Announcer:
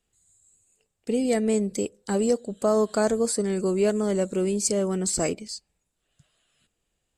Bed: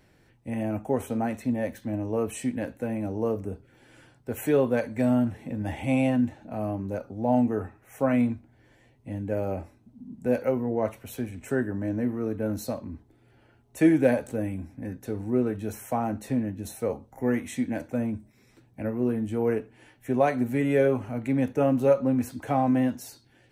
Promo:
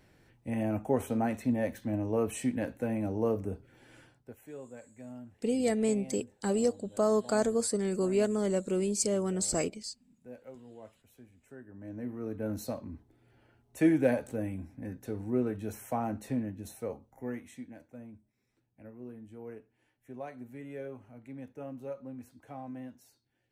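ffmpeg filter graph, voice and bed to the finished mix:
-filter_complex "[0:a]adelay=4350,volume=-5dB[a];[1:a]volume=16dB,afade=t=out:st=3.95:d=0.41:silence=0.0891251,afade=t=in:st=11.65:d=0.92:silence=0.125893,afade=t=out:st=16.21:d=1.55:silence=0.188365[b];[a][b]amix=inputs=2:normalize=0"

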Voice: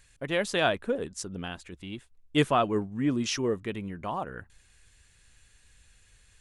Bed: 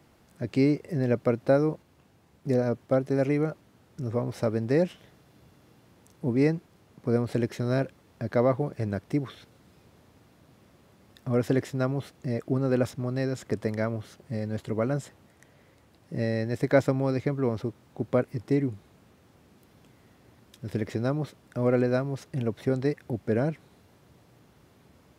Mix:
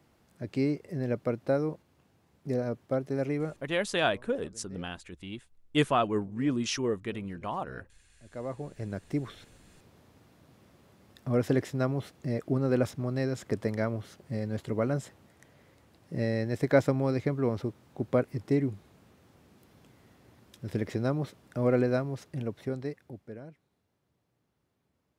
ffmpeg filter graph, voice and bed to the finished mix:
-filter_complex "[0:a]adelay=3400,volume=-1.5dB[a];[1:a]volume=19.5dB,afade=t=out:st=3.67:d=0.29:silence=0.0891251,afade=t=in:st=8.21:d=1.25:silence=0.0562341,afade=t=out:st=21.82:d=1.57:silence=0.125893[b];[a][b]amix=inputs=2:normalize=0"

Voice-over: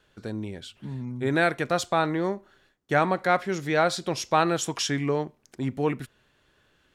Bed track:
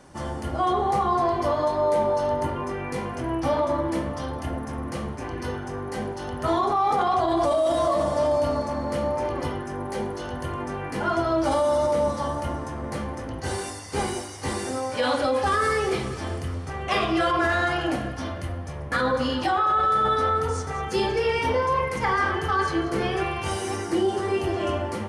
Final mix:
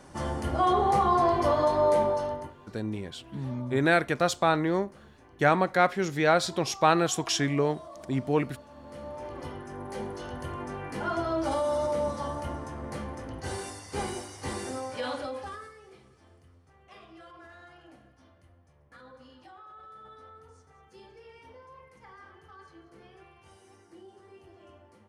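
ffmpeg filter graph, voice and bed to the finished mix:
-filter_complex "[0:a]adelay=2500,volume=0dB[a];[1:a]volume=16.5dB,afade=t=out:st=1.9:d=0.64:silence=0.0749894,afade=t=in:st=8.69:d=1.46:silence=0.141254,afade=t=out:st=14.69:d=1.03:silence=0.0794328[b];[a][b]amix=inputs=2:normalize=0"

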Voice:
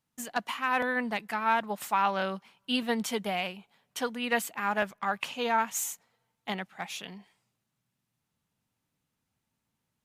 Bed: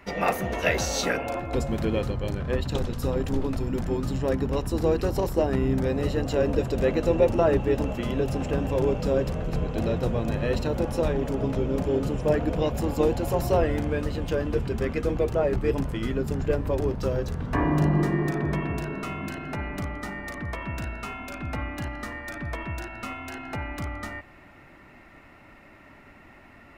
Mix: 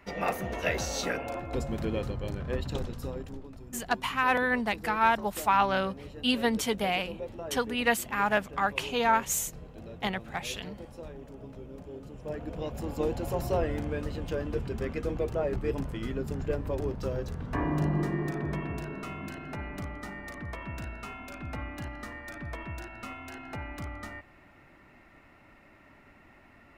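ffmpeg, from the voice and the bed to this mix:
-filter_complex "[0:a]adelay=3550,volume=2.5dB[a];[1:a]volume=7dB,afade=t=out:st=2.73:d=0.7:silence=0.223872,afade=t=in:st=12.08:d=1.16:silence=0.237137[b];[a][b]amix=inputs=2:normalize=0"

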